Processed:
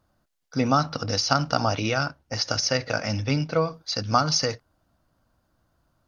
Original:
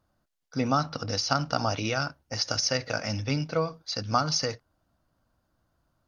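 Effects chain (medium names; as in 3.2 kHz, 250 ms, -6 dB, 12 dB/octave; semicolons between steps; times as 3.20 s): 1.59–3.71 s: treble shelf 7.6 kHz -7.5 dB; trim +4 dB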